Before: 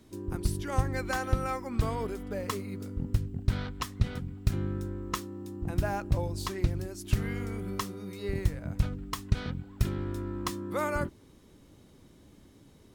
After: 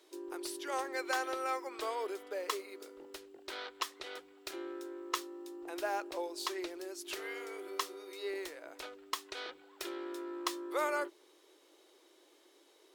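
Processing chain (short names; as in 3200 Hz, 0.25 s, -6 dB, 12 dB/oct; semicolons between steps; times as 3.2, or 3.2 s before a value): elliptic high-pass 340 Hz, stop band 40 dB; bell 3700 Hz +4.5 dB 1.3 oct; gain -2 dB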